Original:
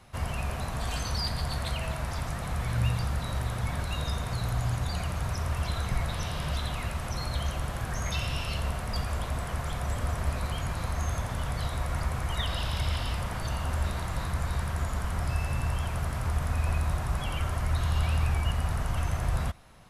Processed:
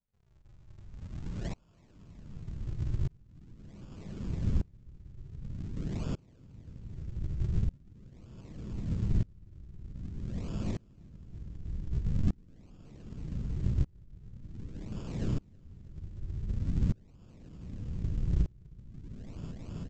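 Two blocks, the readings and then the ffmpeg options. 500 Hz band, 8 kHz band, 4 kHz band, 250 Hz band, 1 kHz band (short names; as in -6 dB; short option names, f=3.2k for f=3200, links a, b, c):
-11.5 dB, under -20 dB, -22.0 dB, -0.5 dB, -23.5 dB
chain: -af "highpass=f=230:t=q:w=0.5412,highpass=f=230:t=q:w=1.307,lowpass=f=2.2k:t=q:w=0.5176,lowpass=f=2.2k:t=q:w=0.7071,lowpass=f=2.2k:t=q:w=1.932,afreqshift=-53,alimiter=level_in=11.5dB:limit=-24dB:level=0:latency=1:release=89,volume=-11.5dB,flanger=delay=2.7:depth=5.6:regen=83:speed=0.55:shape=sinusoidal,adynamicsmooth=sensitivity=7:basefreq=920,aresample=16000,acrusher=samples=39:mix=1:aa=0.000001:lfo=1:lforange=62.4:lforate=0.45,aresample=44100,aecho=1:1:322|644|966|1288|1610|1932:0.562|0.264|0.124|0.0584|0.0274|0.0129,asubboost=boost=9.5:cutoff=240,aeval=exprs='val(0)*pow(10,-31*if(lt(mod(-0.65*n/s,1),2*abs(-0.65)/1000),1-mod(-0.65*n/s,1)/(2*abs(-0.65)/1000),(mod(-0.65*n/s,1)-2*abs(-0.65)/1000)/(1-2*abs(-0.65)/1000))/20)':c=same,volume=7dB"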